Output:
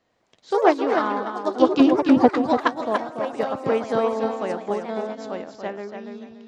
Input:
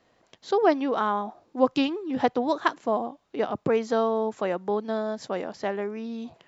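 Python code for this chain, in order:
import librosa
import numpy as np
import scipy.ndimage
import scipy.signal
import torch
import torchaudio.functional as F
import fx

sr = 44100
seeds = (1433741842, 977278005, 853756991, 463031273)

p1 = fx.tilt_shelf(x, sr, db=9.0, hz=860.0, at=(1.8, 2.29))
p2 = p1 + fx.echo_feedback(p1, sr, ms=287, feedback_pct=29, wet_db=-5.0, dry=0)
p3 = fx.echo_pitch(p2, sr, ms=104, semitones=3, count=3, db_per_echo=-6.0)
p4 = fx.upward_expand(p3, sr, threshold_db=-33.0, expansion=1.5)
y = p4 * 10.0 ** (4.0 / 20.0)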